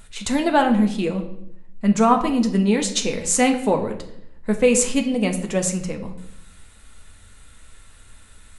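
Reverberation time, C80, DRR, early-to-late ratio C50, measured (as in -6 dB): 0.75 s, 13.0 dB, 4.0 dB, 10.5 dB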